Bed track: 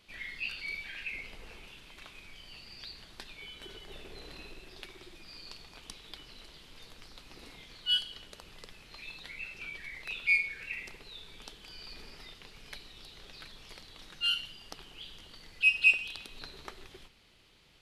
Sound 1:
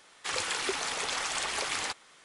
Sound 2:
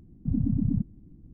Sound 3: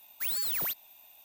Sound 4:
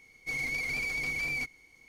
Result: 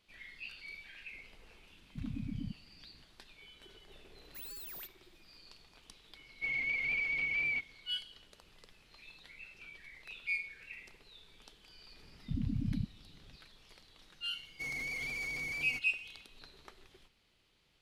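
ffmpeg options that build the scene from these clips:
-filter_complex "[2:a]asplit=2[s0][s1];[4:a]asplit=2[s2][s3];[0:a]volume=0.335[s4];[s0]equalizer=f=110:t=o:w=2.6:g=-3.5[s5];[3:a]agate=range=0.0224:threshold=0.00447:ratio=3:release=100:detection=peak[s6];[s2]lowpass=f=2800:t=q:w=5.1[s7];[s1]lowshelf=f=170:g=5.5[s8];[s3]alimiter=level_in=1.88:limit=0.0631:level=0:latency=1:release=25,volume=0.531[s9];[s5]atrim=end=1.33,asetpts=PTS-STARTPTS,volume=0.251,afade=t=in:d=0.004:c=hsin,afade=t=out:st=1.326:d=0.004:c=hsin,adelay=1700[s10];[s6]atrim=end=1.24,asetpts=PTS-STARTPTS,volume=0.168,afade=t=in:d=0.004:c=hsin,afade=t=out:st=1.236:d=0.004:c=hsin,adelay=4140[s11];[s7]atrim=end=1.88,asetpts=PTS-STARTPTS,volume=0.355,afade=t=in:d=0.004:c=hsin,afade=t=out:st=1.876:d=0.004:c=hsin,adelay=6150[s12];[s8]atrim=end=1.33,asetpts=PTS-STARTPTS,volume=0.237,afade=t=in:d=0.004:c=hsin,afade=t=out:st=1.326:d=0.004:c=hsin,adelay=12030[s13];[s9]atrim=end=1.88,asetpts=PTS-STARTPTS,volume=0.668,afade=t=in:d=0.004:c=hsin,afade=t=out:st=1.876:d=0.004:c=hsin,adelay=14330[s14];[s4][s10][s11][s12][s13][s14]amix=inputs=6:normalize=0"

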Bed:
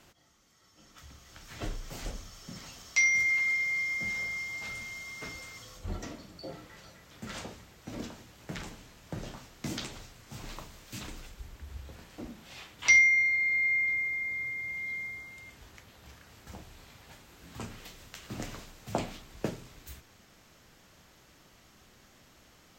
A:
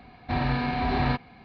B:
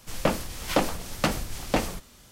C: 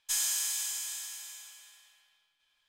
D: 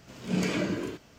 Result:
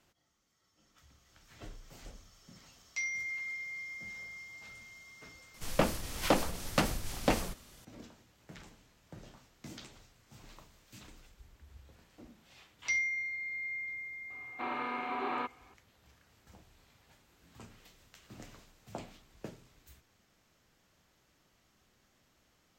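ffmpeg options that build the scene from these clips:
-filter_complex "[0:a]volume=0.266[s0];[1:a]highpass=f=320:w=0.5412,highpass=f=320:w=1.3066,equalizer=f=680:t=q:w=4:g=-8,equalizer=f=1200:t=q:w=4:g=8,equalizer=f=1800:t=q:w=4:g=-8,lowpass=f=3000:w=0.5412,lowpass=f=3000:w=1.3066[s1];[2:a]atrim=end=2.31,asetpts=PTS-STARTPTS,volume=0.631,afade=t=in:d=0.004:c=hsin,afade=t=out:st=2.306:d=0.004:c=hsin,adelay=5540[s2];[s1]atrim=end=1.44,asetpts=PTS-STARTPTS,volume=0.531,afade=t=in:d=0.004:c=hsin,afade=t=out:st=1.436:d=0.004:c=hsin,adelay=14300[s3];[s0][s2][s3]amix=inputs=3:normalize=0"

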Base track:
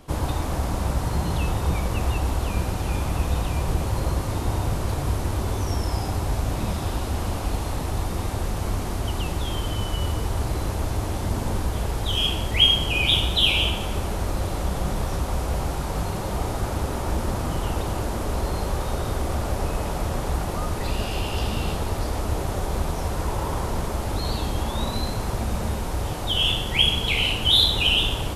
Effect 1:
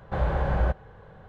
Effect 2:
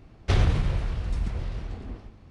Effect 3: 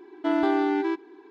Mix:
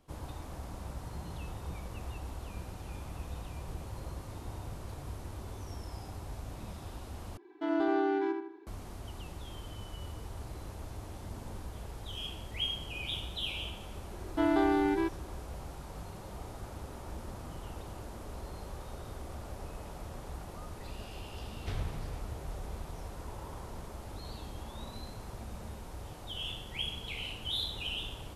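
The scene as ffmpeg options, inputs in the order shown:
-filter_complex "[3:a]asplit=2[s0][s1];[0:a]volume=0.133[s2];[s0]asplit=2[s3][s4];[s4]adelay=79,lowpass=f=2600:p=1,volume=0.631,asplit=2[s5][s6];[s6]adelay=79,lowpass=f=2600:p=1,volume=0.47,asplit=2[s7][s8];[s8]adelay=79,lowpass=f=2600:p=1,volume=0.47,asplit=2[s9][s10];[s10]adelay=79,lowpass=f=2600:p=1,volume=0.47,asplit=2[s11][s12];[s12]adelay=79,lowpass=f=2600:p=1,volume=0.47,asplit=2[s13][s14];[s14]adelay=79,lowpass=f=2600:p=1,volume=0.47[s15];[s3][s5][s7][s9][s11][s13][s15]amix=inputs=7:normalize=0[s16];[s2]asplit=2[s17][s18];[s17]atrim=end=7.374[s19];[s16]atrim=end=1.3,asetpts=PTS-STARTPTS,volume=0.335[s20];[s18]atrim=start=8.666[s21];[s1]atrim=end=1.3,asetpts=PTS-STARTPTS,volume=0.631,afade=t=in:d=0.004:c=hsin,afade=t=out:st=1.296:d=0.004:c=hsin,adelay=14130[s22];[2:a]atrim=end=2.3,asetpts=PTS-STARTPTS,volume=0.168,afade=t=in:d=0.004:c=hsin,afade=t=out:st=2.296:d=0.004:c=hsin,adelay=21380[s23];[s19][s20]acrossfade=d=0.004:c1=hsin:c2=hsin[s24];[s24][s21]acrossfade=d=0.004:c1=hsin:c2=hsin[s25];[s25][s22][s23]amix=inputs=3:normalize=0"

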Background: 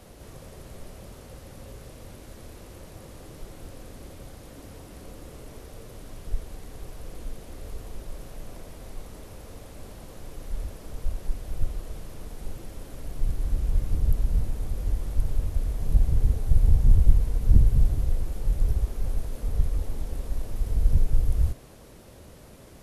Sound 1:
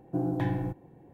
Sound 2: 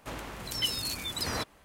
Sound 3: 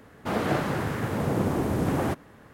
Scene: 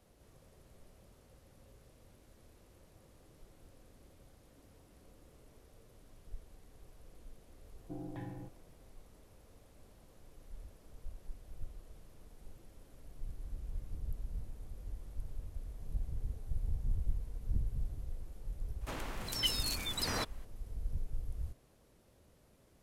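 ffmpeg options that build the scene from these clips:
-filter_complex "[0:a]volume=0.133[s0];[1:a]atrim=end=1.13,asetpts=PTS-STARTPTS,volume=0.168,afade=t=in:d=0.004:c=hsin,afade=t=out:st=1.126:d=0.004:c=hsin,adelay=7760[s1];[2:a]atrim=end=1.64,asetpts=PTS-STARTPTS,volume=0.708,afade=t=in:d=0.004:c=hsin,afade=t=out:st=1.636:d=0.004:c=hsin,adelay=18810[s2];[s0][s1][s2]amix=inputs=3:normalize=0"

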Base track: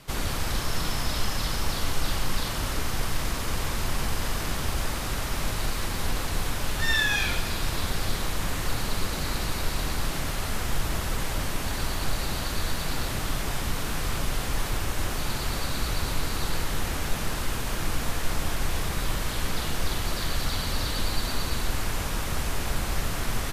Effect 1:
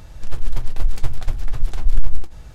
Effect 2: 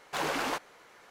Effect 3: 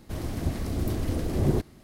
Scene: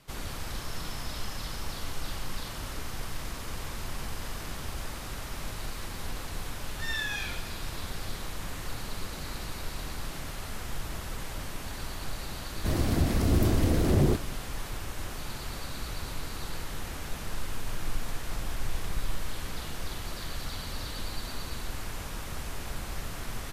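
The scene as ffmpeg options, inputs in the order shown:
-filter_complex "[0:a]volume=0.376[s0];[3:a]alimiter=level_in=8.91:limit=0.891:release=50:level=0:latency=1[s1];[1:a]acompressor=threshold=0.141:ratio=6:attack=3.2:release=140:knee=1:detection=peak[s2];[s1]atrim=end=1.83,asetpts=PTS-STARTPTS,volume=0.2,afade=t=in:d=0.004:c=hsin,afade=t=out:st=1.826:d=0.004:c=hsin,adelay=12550[s3];[s2]atrim=end=2.54,asetpts=PTS-STARTPTS,volume=0.355,afade=t=in:d=0.004:c=hsin,afade=t=out:st=2.536:d=0.004:c=hsin,adelay=17110[s4];[s0][s3][s4]amix=inputs=3:normalize=0"

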